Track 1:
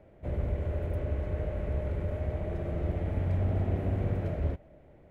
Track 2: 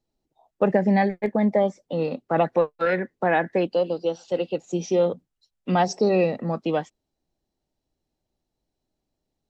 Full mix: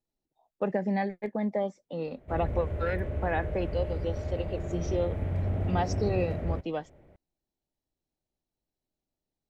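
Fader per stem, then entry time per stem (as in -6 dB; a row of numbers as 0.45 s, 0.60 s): -1.0 dB, -9.0 dB; 2.05 s, 0.00 s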